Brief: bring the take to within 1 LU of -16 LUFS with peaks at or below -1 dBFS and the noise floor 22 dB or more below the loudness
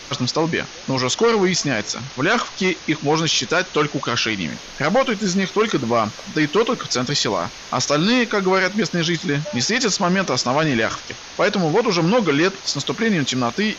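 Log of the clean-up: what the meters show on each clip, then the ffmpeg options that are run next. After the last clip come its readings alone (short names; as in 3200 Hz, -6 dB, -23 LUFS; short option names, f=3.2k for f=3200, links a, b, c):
noise floor -37 dBFS; noise floor target -42 dBFS; loudness -19.5 LUFS; peak -8.5 dBFS; loudness target -16.0 LUFS
-> -af "afftdn=nr=6:nf=-37"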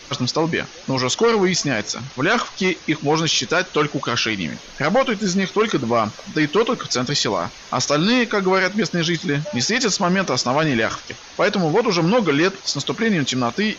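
noise floor -40 dBFS; noise floor target -42 dBFS
-> -af "afftdn=nr=6:nf=-40"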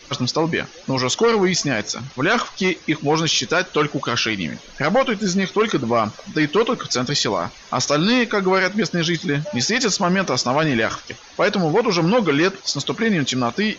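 noise floor -43 dBFS; loudness -19.5 LUFS; peak -9.0 dBFS; loudness target -16.0 LUFS
-> -af "volume=3.5dB"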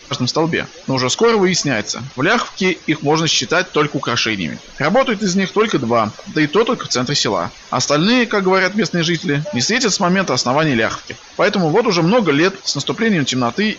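loudness -16.0 LUFS; peak -5.5 dBFS; noise floor -39 dBFS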